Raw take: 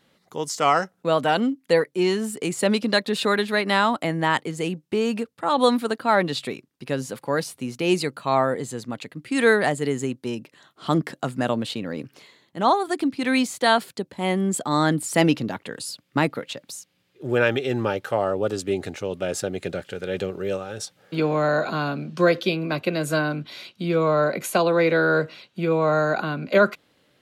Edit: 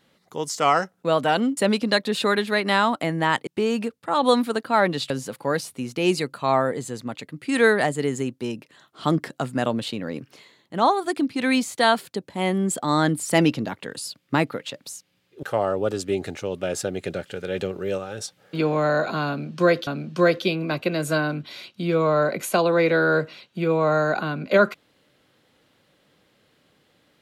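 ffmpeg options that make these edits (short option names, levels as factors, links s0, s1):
-filter_complex "[0:a]asplit=6[s0][s1][s2][s3][s4][s5];[s0]atrim=end=1.572[s6];[s1]atrim=start=2.578:end=4.482[s7];[s2]atrim=start=4.818:end=6.452[s8];[s3]atrim=start=6.928:end=17.262[s9];[s4]atrim=start=18.018:end=22.462[s10];[s5]atrim=start=21.878[s11];[s6][s7]acrossfade=d=0.004:c1=hsin:c2=hsin[s12];[s12][s8]acrossfade=d=0.004:c1=hsin:c2=hsin[s13];[s13][s9]acrossfade=d=0.004:c1=hsin:c2=hsin[s14];[s14][s10]acrossfade=d=0.004:c1=hsin:c2=hsin[s15];[s15][s11]acrossfade=d=0.004:c1=hsin:c2=hsin"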